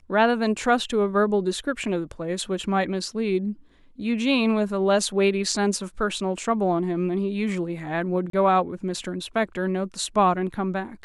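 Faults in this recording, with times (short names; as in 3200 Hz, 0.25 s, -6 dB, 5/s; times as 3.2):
8.3–8.33 gap 33 ms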